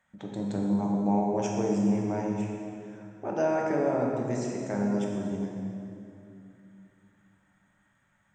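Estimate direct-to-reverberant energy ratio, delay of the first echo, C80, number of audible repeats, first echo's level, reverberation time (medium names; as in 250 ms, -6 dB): -1.5 dB, no echo, 1.5 dB, no echo, no echo, 2.7 s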